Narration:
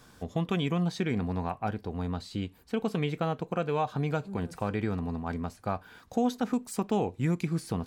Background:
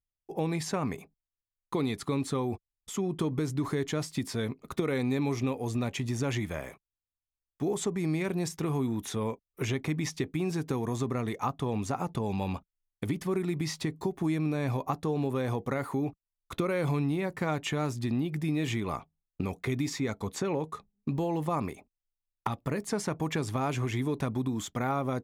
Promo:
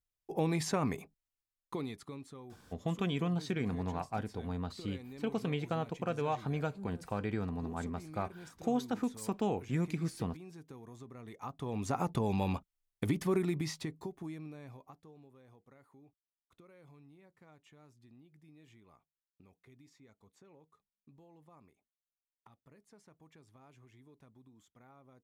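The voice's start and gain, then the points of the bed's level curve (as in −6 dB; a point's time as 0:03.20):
2.50 s, −5.0 dB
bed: 0:01.40 −1 dB
0:02.33 −19.5 dB
0:11.13 −19.5 dB
0:11.99 −0.5 dB
0:13.39 −0.5 dB
0:15.34 −30 dB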